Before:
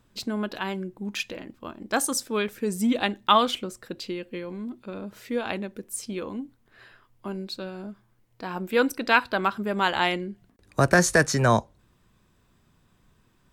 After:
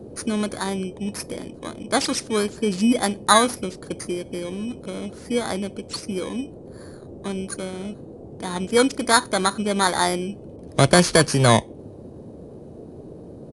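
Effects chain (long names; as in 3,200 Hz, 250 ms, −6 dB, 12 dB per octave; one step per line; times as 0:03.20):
samples in bit-reversed order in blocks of 16 samples
noise in a band 65–510 Hz −45 dBFS
downsampling to 22,050 Hz
level +5 dB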